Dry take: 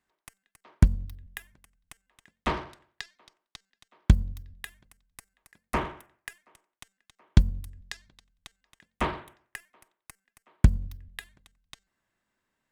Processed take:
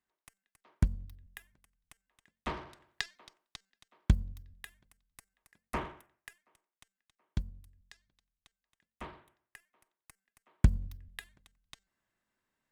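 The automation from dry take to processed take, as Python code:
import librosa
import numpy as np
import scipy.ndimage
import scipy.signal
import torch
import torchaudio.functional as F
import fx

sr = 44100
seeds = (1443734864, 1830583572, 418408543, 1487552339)

y = fx.gain(x, sr, db=fx.line((2.55, -9.0), (3.01, 3.5), (4.19, -7.5), (5.94, -7.5), (7.59, -17.0), (9.08, -17.0), (10.74, -4.5)))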